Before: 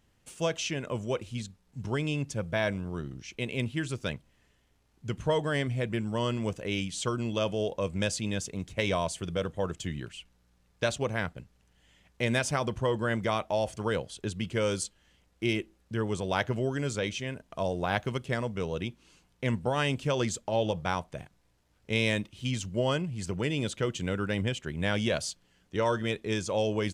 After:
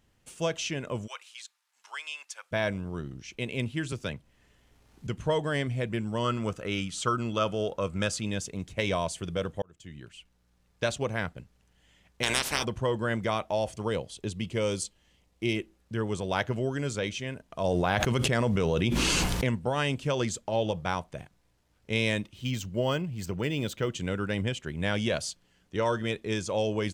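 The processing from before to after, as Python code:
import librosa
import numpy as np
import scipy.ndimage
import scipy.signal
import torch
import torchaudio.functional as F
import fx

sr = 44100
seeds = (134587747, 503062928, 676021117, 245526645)

y = fx.highpass(x, sr, hz=1000.0, slope=24, at=(1.06, 2.51), fade=0.02)
y = fx.band_squash(y, sr, depth_pct=40, at=(3.92, 5.07))
y = fx.peak_eq(y, sr, hz=1300.0, db=14.5, octaves=0.26, at=(6.24, 8.23))
y = fx.spec_clip(y, sr, under_db=29, at=(12.22, 12.63), fade=0.02)
y = fx.peak_eq(y, sr, hz=1500.0, db=-7.5, octaves=0.38, at=(13.72, 15.57))
y = fx.env_flatten(y, sr, amount_pct=100, at=(17.64, 19.49))
y = fx.resample_linear(y, sr, factor=2, at=(22.34, 23.92))
y = fx.edit(y, sr, fx.fade_in_span(start_s=9.62, length_s=1.39, curve='qsin'), tone=tone)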